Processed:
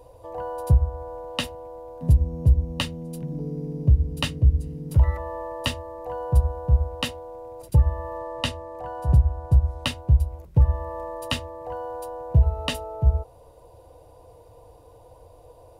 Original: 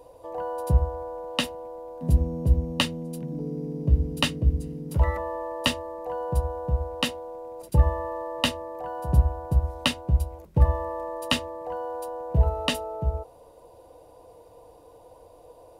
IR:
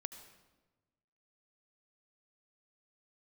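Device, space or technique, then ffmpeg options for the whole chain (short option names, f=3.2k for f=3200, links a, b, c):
car stereo with a boomy subwoofer: -filter_complex "[0:a]asettb=1/sr,asplit=3[a][b][c];[a]atrim=end=8.184[d];[b]atrim=start=8.18:end=9.85,asetpts=PTS-STARTPTS,afade=t=in:d=0.004:c=qsin,afade=t=out:st=1.666:d=0.004:c=qsin,lowpass=11k[e];[c]atrim=start=9.846[f];[d][e]acrossfade=d=0.004:c1=hsin:c2=qsin[g];[g][f]acrossfade=d=0.004:c1=qsin:c2=hsin,lowshelf=f=150:t=q:w=1.5:g=7.5,alimiter=limit=-8.5dB:level=0:latency=1:release=371"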